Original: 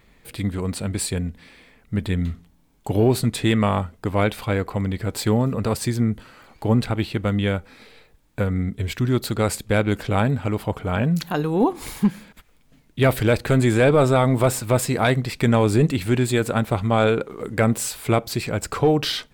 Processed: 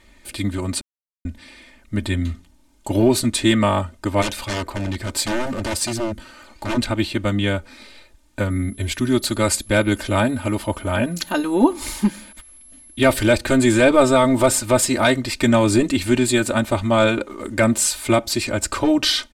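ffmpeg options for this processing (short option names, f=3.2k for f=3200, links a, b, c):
-filter_complex "[0:a]asplit=3[a][b][c];[a]afade=t=out:st=4.21:d=0.02[d];[b]aeval=exprs='0.0891*(abs(mod(val(0)/0.0891+3,4)-2)-1)':c=same,afade=t=in:st=4.21:d=0.02,afade=t=out:st=6.76:d=0.02[e];[c]afade=t=in:st=6.76:d=0.02[f];[d][e][f]amix=inputs=3:normalize=0,asettb=1/sr,asplit=3[g][h][i];[g]atrim=end=8.504[j];[h]atrim=start=8.5:end=13.27,asetpts=PTS-STARTPTS,afade=t=in:d=0.004:c=qsin,afade=t=out:st=4.766:d=0.004:c=qsin,aeval=exprs='val(0)+0.00282*sin(2*PI*11000*n/s)':c=same[k];[i]atrim=start=13.266[l];[j][k]acrossfade=d=0.004:c1=hsin:c2=qsin[m];[m][l]acrossfade=d=0.004:c1=qsin:c2=hsin,asplit=3[n][o][p];[n]atrim=end=0.81,asetpts=PTS-STARTPTS,afade=t=out:st=0.806:d=0.004:c=hsin[q];[o]atrim=start=0.81:end=1.25,asetpts=PTS-STARTPTS,volume=0[r];[p]atrim=start=1.25,asetpts=PTS-STARTPTS,afade=t=in:d=0.004:c=hsin[s];[q][r][s]concat=n=3:v=0:a=1,lowpass=8.7k,highshelf=f=5.3k:g=11,aecho=1:1:3.3:0.95"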